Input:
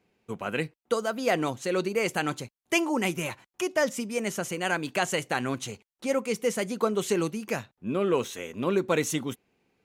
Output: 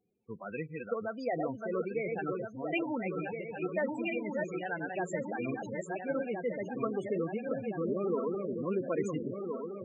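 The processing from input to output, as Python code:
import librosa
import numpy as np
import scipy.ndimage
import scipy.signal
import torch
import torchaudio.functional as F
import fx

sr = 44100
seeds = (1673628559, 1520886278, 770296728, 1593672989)

y = fx.reverse_delay_fb(x, sr, ms=684, feedback_pct=71, wet_db=-3)
y = fx.spec_topn(y, sr, count=16)
y = fx.band_squash(y, sr, depth_pct=70, at=(7.51, 8.35))
y = y * 10.0 ** (-7.5 / 20.0)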